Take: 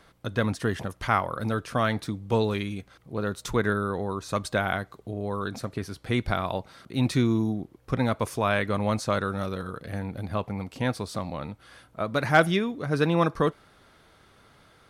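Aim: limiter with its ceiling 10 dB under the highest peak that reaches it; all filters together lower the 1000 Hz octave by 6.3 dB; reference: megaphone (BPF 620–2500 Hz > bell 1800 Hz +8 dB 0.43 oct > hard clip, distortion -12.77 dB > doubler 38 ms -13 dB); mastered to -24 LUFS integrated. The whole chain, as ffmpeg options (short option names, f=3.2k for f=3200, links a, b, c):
-filter_complex "[0:a]equalizer=f=1k:t=o:g=-9,alimiter=limit=-19.5dB:level=0:latency=1,highpass=620,lowpass=2.5k,equalizer=f=1.8k:t=o:w=0.43:g=8,asoftclip=type=hard:threshold=-28dB,asplit=2[a][b];[b]adelay=38,volume=-13dB[c];[a][c]amix=inputs=2:normalize=0,volume=14.5dB"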